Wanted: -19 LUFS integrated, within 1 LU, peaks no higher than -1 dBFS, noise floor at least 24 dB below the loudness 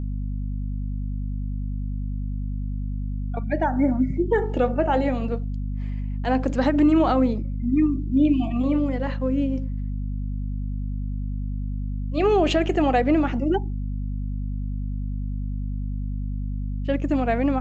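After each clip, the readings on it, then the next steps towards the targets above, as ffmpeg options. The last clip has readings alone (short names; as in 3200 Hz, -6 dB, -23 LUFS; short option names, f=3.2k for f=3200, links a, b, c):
hum 50 Hz; harmonics up to 250 Hz; hum level -25 dBFS; loudness -25.0 LUFS; peak -9.0 dBFS; loudness target -19.0 LUFS
-> -af "bandreject=f=50:t=h:w=6,bandreject=f=100:t=h:w=6,bandreject=f=150:t=h:w=6,bandreject=f=200:t=h:w=6,bandreject=f=250:t=h:w=6"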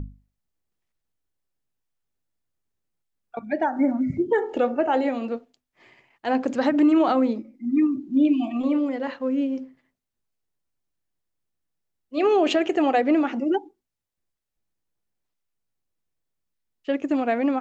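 hum none; loudness -23.0 LUFS; peak -9.5 dBFS; loudness target -19.0 LUFS
-> -af "volume=4dB"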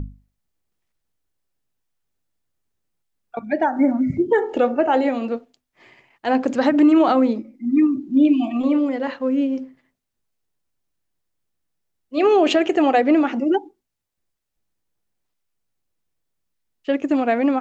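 loudness -19.0 LUFS; peak -5.5 dBFS; noise floor -79 dBFS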